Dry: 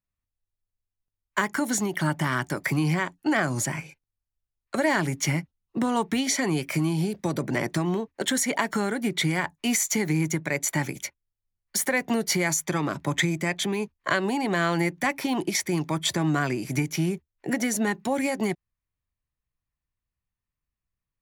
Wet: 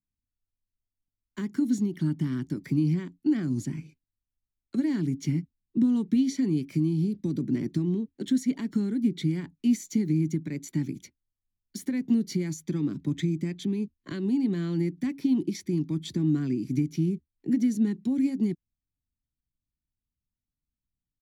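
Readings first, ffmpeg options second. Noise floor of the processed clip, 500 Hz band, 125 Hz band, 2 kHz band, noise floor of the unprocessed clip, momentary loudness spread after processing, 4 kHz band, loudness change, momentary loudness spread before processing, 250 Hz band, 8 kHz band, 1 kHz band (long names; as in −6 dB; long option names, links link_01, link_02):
below −85 dBFS, −8.0 dB, −0.5 dB, −19.5 dB, below −85 dBFS, 7 LU, −13.5 dB, −2.0 dB, 5 LU, +2.0 dB, −16.0 dB, below −20 dB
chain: -af "firequalizer=gain_entry='entry(130,0);entry(260,7);entry(600,-23);entry(4000,-9);entry(8300,-17)':delay=0.05:min_phase=1,volume=-2dB"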